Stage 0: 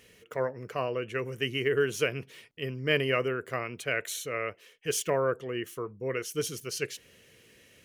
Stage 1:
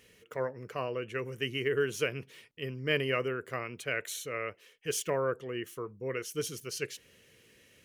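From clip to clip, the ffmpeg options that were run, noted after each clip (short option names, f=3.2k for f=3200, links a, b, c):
-af "equalizer=f=680:t=o:w=0.24:g=-3,volume=-3dB"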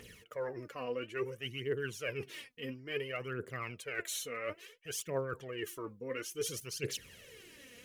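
-af "areverse,acompressor=threshold=-42dB:ratio=6,areverse,aphaser=in_gain=1:out_gain=1:delay=4.3:decay=0.65:speed=0.58:type=triangular,volume=4dB"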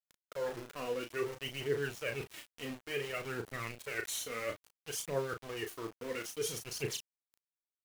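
-filter_complex "[0:a]aeval=exprs='val(0)*gte(abs(val(0)),0.00708)':c=same,asplit=2[a][b];[b]adelay=35,volume=-6.5dB[c];[a][c]amix=inputs=2:normalize=0"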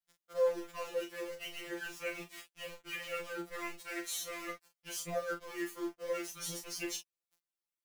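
-af "afftfilt=real='re*2.83*eq(mod(b,8),0)':imag='im*2.83*eq(mod(b,8),0)':win_size=2048:overlap=0.75,volume=1.5dB"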